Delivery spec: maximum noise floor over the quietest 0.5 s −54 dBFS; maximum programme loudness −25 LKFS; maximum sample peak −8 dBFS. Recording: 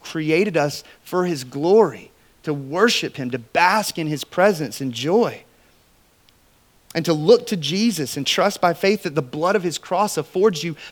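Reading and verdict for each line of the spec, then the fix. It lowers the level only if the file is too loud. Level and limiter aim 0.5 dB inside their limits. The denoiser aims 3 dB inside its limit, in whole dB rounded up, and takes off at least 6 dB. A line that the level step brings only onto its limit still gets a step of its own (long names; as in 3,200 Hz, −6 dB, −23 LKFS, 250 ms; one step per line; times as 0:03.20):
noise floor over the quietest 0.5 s −57 dBFS: in spec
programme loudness −20.0 LKFS: out of spec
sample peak −2.5 dBFS: out of spec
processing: level −5.5 dB
brickwall limiter −8.5 dBFS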